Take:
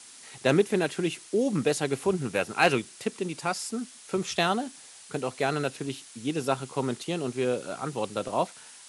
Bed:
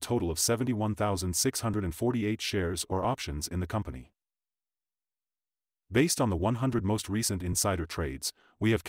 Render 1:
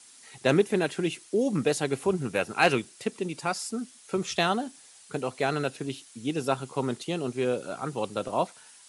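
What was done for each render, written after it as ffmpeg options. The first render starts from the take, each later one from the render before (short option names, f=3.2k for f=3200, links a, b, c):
-af "afftdn=nr=6:nf=-49"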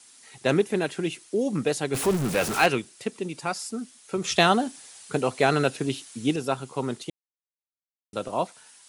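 -filter_complex "[0:a]asettb=1/sr,asplit=3[a][b][c];[a]atrim=end=1.944[d];[b]atrim=start=1.94:end=2.66,asetpts=PTS-STARTPTS,afade=t=in:d=0.004:c=qsin,afade=t=out:st=0.716:d=0.004:c=qsin,aeval=exprs='val(0)+0.5*0.0562*sgn(val(0))':c=same[e];[c]atrim=start=2.656[f];[d][e]acrossfade=d=0.004:c1=hsin:c2=qsin[g];[g][f]acrossfade=d=0.004:c1=qsin:c2=hsin,asplit=5[h][i][j][k][l];[h]atrim=end=4.242[m];[i]atrim=start=4.238:end=6.362,asetpts=PTS-STARTPTS,volume=6dB[n];[j]atrim=start=6.358:end=7.1,asetpts=PTS-STARTPTS,afade=t=out:st=0.738:d=0.004:c=hsin[o];[k]atrim=start=7.1:end=8.13,asetpts=PTS-STARTPTS,volume=0[p];[l]atrim=start=8.13,asetpts=PTS-STARTPTS,afade=t=in:d=0.004:c=hsin[q];[m][n]acrossfade=d=0.004:c1=hsin:c2=hsin[r];[o][p][q]concat=n=3:v=0:a=1[s];[r][s]acrossfade=d=0.004:c1=hsin:c2=hsin"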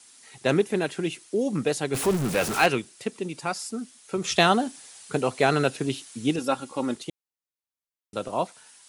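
-filter_complex "[0:a]asettb=1/sr,asplit=3[a][b][c];[a]atrim=end=6.384[d];[b]atrim=start=6.38:end=6.95,asetpts=PTS-STARTPTS,afade=t=in:d=0.004:c=qsin,afade=t=out:st=0.566:d=0.004:c=qsin,aecho=1:1:3.6:0.69,atrim=end_sample=25137[e];[c]atrim=start=6.946[f];[d][e]acrossfade=d=0.004:c1=hsin:c2=qsin[g];[g][f]acrossfade=d=0.004:c1=qsin:c2=hsin"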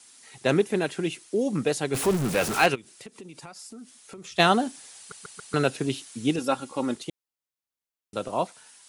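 -filter_complex "[0:a]asplit=3[a][b][c];[a]afade=t=out:st=2.74:d=0.02[d];[b]acompressor=threshold=-40dB:ratio=6:attack=3.2:release=140:knee=1:detection=peak,afade=t=in:st=2.74:d=0.02,afade=t=out:st=4.38:d=0.02[e];[c]afade=t=in:st=4.38:d=0.02[f];[d][e][f]amix=inputs=3:normalize=0,asplit=5[g][h][i][j][k];[g]atrim=end=5.122[l];[h]atrim=start=4.978:end=5.122[m];[i]atrim=start=4.978:end=5.122[n];[j]atrim=start=4.978:end=5.122[o];[k]atrim=start=5.538[p];[l][m]acrossfade=d=0.004:c1=hsin:c2=hsin[q];[q][n]acrossfade=d=0.004:c1=hsin:c2=hsin[r];[r][o]acrossfade=d=0.004:c1=hsin:c2=hsin[s];[s][p]acrossfade=d=0.004:c1=hsin:c2=hsin"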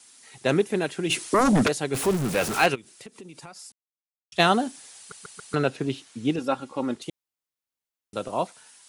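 -filter_complex "[0:a]asplit=3[a][b][c];[a]afade=t=out:st=1.09:d=0.02[d];[b]aeval=exprs='0.178*sin(PI/2*3.16*val(0)/0.178)':c=same,afade=t=in:st=1.09:d=0.02,afade=t=out:st=1.67:d=0.02[e];[c]afade=t=in:st=1.67:d=0.02[f];[d][e][f]amix=inputs=3:normalize=0,asettb=1/sr,asplit=3[g][h][i];[g]atrim=end=5.554[j];[h]atrim=start=5.55:end=7.02,asetpts=PTS-STARTPTS,afade=t=in:d=0.004:c=qsin,afade=t=out:st=1.466:d=0.004:c=qsin,aemphasis=mode=reproduction:type=50kf[k];[i]atrim=start=7.016[l];[j][k]acrossfade=d=0.004:c1=hsin:c2=qsin[m];[m][l]acrossfade=d=0.004:c1=qsin:c2=hsin,asplit=3[n][o][p];[n]atrim=end=3.72,asetpts=PTS-STARTPTS,afade=t=out:st=3.716:d=0.004:c=hsin[q];[o]atrim=start=3.72:end=4.32,asetpts=PTS-STARTPTS,volume=0[r];[p]atrim=start=4.32,asetpts=PTS-STARTPTS,afade=t=in:d=0.004:c=hsin[s];[q][r][s]concat=n=3:v=0:a=1"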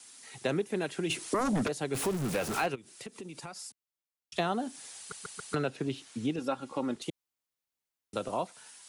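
-filter_complex "[0:a]acrossover=split=160|1200[a][b][c];[c]alimiter=limit=-17dB:level=0:latency=1:release=321[d];[a][b][d]amix=inputs=3:normalize=0,acompressor=threshold=-31dB:ratio=2.5"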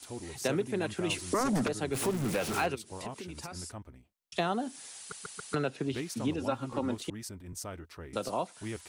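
-filter_complex "[1:a]volume=-13dB[a];[0:a][a]amix=inputs=2:normalize=0"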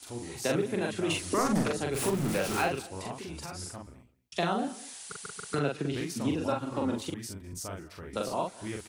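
-filter_complex "[0:a]asplit=2[a][b];[b]adelay=42,volume=-2.5dB[c];[a][c]amix=inputs=2:normalize=0,asplit=2[d][e];[e]adelay=204.1,volume=-20dB,highshelf=f=4k:g=-4.59[f];[d][f]amix=inputs=2:normalize=0"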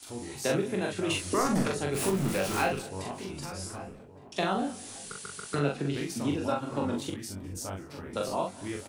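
-filter_complex "[0:a]asplit=2[a][b];[b]adelay=21,volume=-8dB[c];[a][c]amix=inputs=2:normalize=0,asplit=2[d][e];[e]adelay=1166,lowpass=f=1.2k:p=1,volume=-15.5dB,asplit=2[f][g];[g]adelay=1166,lowpass=f=1.2k:p=1,volume=0.46,asplit=2[h][i];[i]adelay=1166,lowpass=f=1.2k:p=1,volume=0.46,asplit=2[j][k];[k]adelay=1166,lowpass=f=1.2k:p=1,volume=0.46[l];[d][f][h][j][l]amix=inputs=5:normalize=0"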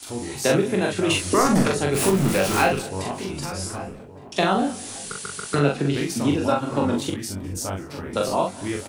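-af "volume=8.5dB"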